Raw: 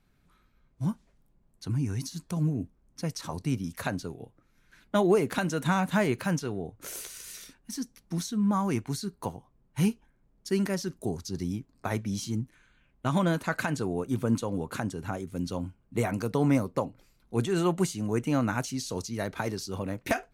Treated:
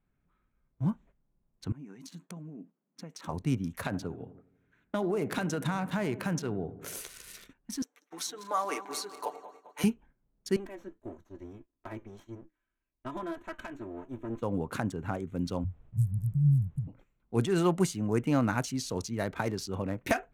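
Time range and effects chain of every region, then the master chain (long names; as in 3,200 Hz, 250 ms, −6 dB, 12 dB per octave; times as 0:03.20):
0:01.72–0:03.28: downward compressor, threshold −39 dBFS + linear-phase brick-wall high-pass 150 Hz
0:03.85–0:06.98: high-pass filter 52 Hz + downward compressor, threshold −26 dBFS + feedback echo with a low-pass in the loop 82 ms, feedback 73%, low-pass 1,200 Hz, level −15 dB
0:07.82–0:09.84: feedback delay that plays each chunk backwards 103 ms, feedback 74%, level −12 dB + high-pass filter 430 Hz 24 dB per octave + comb filter 6.8 ms, depth 77%
0:10.56–0:14.42: lower of the sound and its delayed copy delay 3.1 ms + tuned comb filter 340 Hz, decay 0.16 s, harmonics odd + flanger 1.7 Hz, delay 6.6 ms, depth 2.3 ms, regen −78%
0:15.63–0:16.87: Chebyshev band-stop filter 150–8,700 Hz, order 4 + low-shelf EQ 200 Hz +9.5 dB + background noise brown −59 dBFS
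whole clip: adaptive Wiener filter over 9 samples; noise gate −53 dBFS, range −9 dB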